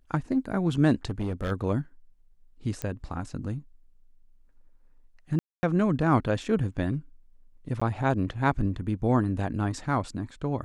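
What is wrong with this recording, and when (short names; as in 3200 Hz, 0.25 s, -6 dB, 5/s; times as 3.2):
1.09–1.52 clipped -25.5 dBFS
2.82 pop -16 dBFS
5.39–5.63 gap 0.24 s
7.8–7.82 gap 15 ms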